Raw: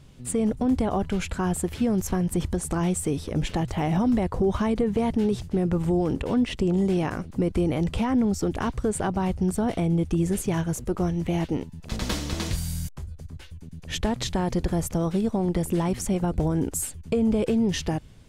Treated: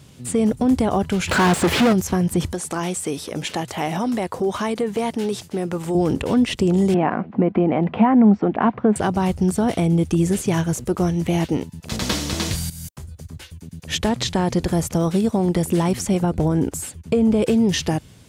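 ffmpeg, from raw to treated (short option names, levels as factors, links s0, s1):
-filter_complex "[0:a]asplit=3[s0][s1][s2];[s0]afade=t=out:st=1.27:d=0.02[s3];[s1]asplit=2[s4][s5];[s5]highpass=f=720:p=1,volume=63.1,asoftclip=type=tanh:threshold=0.188[s6];[s4][s6]amix=inputs=2:normalize=0,lowpass=f=1800:p=1,volume=0.501,afade=t=in:st=1.27:d=0.02,afade=t=out:st=1.92:d=0.02[s7];[s2]afade=t=in:st=1.92:d=0.02[s8];[s3][s7][s8]amix=inputs=3:normalize=0,asettb=1/sr,asplit=3[s9][s10][s11];[s9]atrim=end=2.524[s12];[s10]atrim=start=2.52:end=5.95,asetpts=PTS-STARTPTS,afade=t=in:d=0.004:c=qsin,afade=t=out:st=3.426:d=0.004:c=qsin,highpass=f=450:p=1[s13];[s11]atrim=start=5.946[s14];[s12][s13]acrossfade=d=0.004:c1=hsin:c2=qsin[s15];[s15][s14]acrossfade=d=0.004:c1=qsin:c2=hsin,asettb=1/sr,asplit=3[s16][s17][s18];[s16]atrim=end=6.944[s19];[s17]atrim=start=6.94:end=8.96,asetpts=PTS-STARTPTS,afade=t=in:d=0.004:c=qsin,afade=t=out:st=2.016:d=0.004:c=qsin,highpass=190,equalizer=f=210:t=q:w=4:g=9,equalizer=f=720:t=q:w=4:g=8,equalizer=f=1000:t=q:w=4:g=4,lowpass=f=2400:w=0.5412,lowpass=f=2400:w=1.3066[s20];[s18]atrim=start=8.956[s21];[s19][s20]acrossfade=d=0.004:c1=hsin:c2=qsin[s22];[s22][s21]acrossfade=d=0.004:c1=qsin:c2=hsin,asettb=1/sr,asplit=3[s23][s24][s25];[s23]atrim=end=14.094[s26];[s24]atrim=start=14.09:end=14.62,asetpts=PTS-STARTPTS,afade=t=in:d=0.004:c=qsin,afade=t=out:st=0.526:d=0.004:c=qsin,highshelf=f=12000:g=-11[s27];[s25]atrim=start=14.616[s28];[s26][s27]acrossfade=d=0.004:c1=hsin:c2=qsin[s29];[s29][s28]acrossfade=d=0.004:c1=qsin:c2=hsin,asettb=1/sr,asplit=3[s30][s31][s32];[s30]atrim=end=16.234[s33];[s31]atrim=start=16.23:end=17.42,asetpts=PTS-STARTPTS,afade=t=in:d=0.004:c=qsin,afade=t=out:st=1.186:d=0.004:c=qsin,highshelf=f=3600:g=-6.5[s34];[s32]atrim=start=17.416[s35];[s33][s34]acrossfade=d=0.004:c1=hsin:c2=qsin[s36];[s36][s35]acrossfade=d=0.004:c1=qsin:c2=hsin,asplit=2[s37][s38];[s37]atrim=end=12.7,asetpts=PTS-STARTPTS,afade=t=out:st=12.696:d=0.004:c=hsin:silence=0.177828[s39];[s38]atrim=start=12.7,asetpts=PTS-STARTPTS,afade=t=in:d=0.61:c=qsin:silence=0.177828[s40];[s39][s40]concat=n=2:v=0:a=1,highpass=81,acrossover=split=5900[s41][s42];[s42]acompressor=threshold=0.00794:ratio=4:attack=1:release=60[s43];[s41][s43]amix=inputs=2:normalize=0,highshelf=f=4900:g=7.5,volume=1.88"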